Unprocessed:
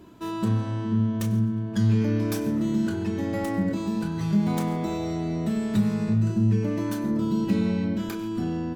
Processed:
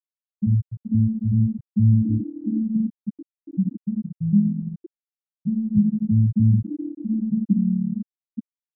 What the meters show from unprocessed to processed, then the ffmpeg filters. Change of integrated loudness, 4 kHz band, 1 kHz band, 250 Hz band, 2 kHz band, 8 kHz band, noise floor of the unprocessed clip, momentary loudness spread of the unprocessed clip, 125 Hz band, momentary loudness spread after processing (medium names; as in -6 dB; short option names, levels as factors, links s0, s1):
+3.0 dB, under -40 dB, under -35 dB, +2.0 dB, under -40 dB, under -35 dB, -32 dBFS, 6 LU, +4.0 dB, 14 LU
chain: -af "acontrast=44,afftfilt=real='re*gte(hypot(re,im),0.891)':imag='im*gte(hypot(re,im),0.891)':win_size=1024:overlap=0.75"